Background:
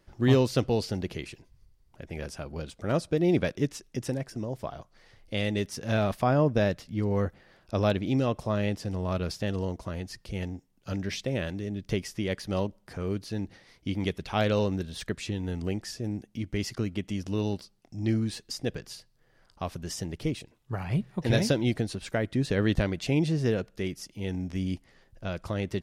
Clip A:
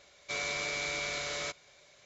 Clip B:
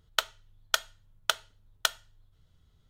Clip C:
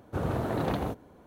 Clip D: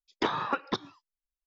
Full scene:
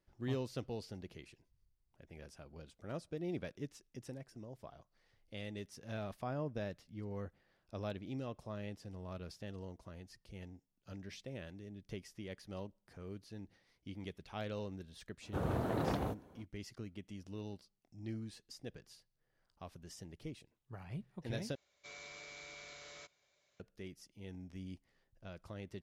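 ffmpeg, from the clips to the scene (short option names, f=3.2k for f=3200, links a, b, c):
-filter_complex "[0:a]volume=-16.5dB,asplit=2[a][b];[a]atrim=end=21.554[c];[1:a]atrim=end=2.05,asetpts=PTS-STARTPTS,volume=-17dB[d];[b]atrim=start=23.596[e];[3:a]atrim=end=1.26,asetpts=PTS-STARTPTS,volume=-6dB,afade=t=in:d=0.05,afade=t=out:st=1.21:d=0.05,adelay=15200[f];[c][d]acrossfade=d=0.004:c1=hsin:c2=hsin[g];[g][e]acrossfade=d=0.004:c1=hsin:c2=hsin[h];[h][f]amix=inputs=2:normalize=0"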